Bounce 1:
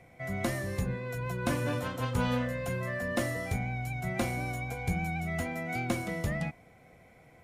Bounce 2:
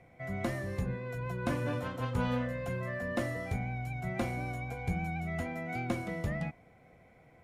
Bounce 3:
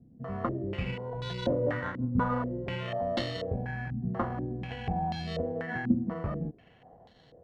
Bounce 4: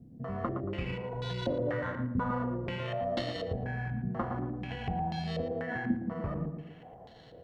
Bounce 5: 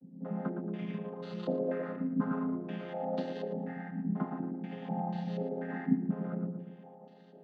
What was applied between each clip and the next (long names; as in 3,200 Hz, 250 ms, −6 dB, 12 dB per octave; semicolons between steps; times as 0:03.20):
high-shelf EQ 4,000 Hz −9.5 dB; level −2 dB
decimation without filtering 18×; low-pass on a step sequencer 4.1 Hz 240–3,900 Hz
on a send: tape delay 114 ms, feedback 41%, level −5.5 dB, low-pass 1,500 Hz; on the sum: downward compressor 1.5 to 1, threshold −46 dBFS, peak gain reduction 10 dB; level +4 dB
channel vocoder with a chord as carrier minor triad, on F3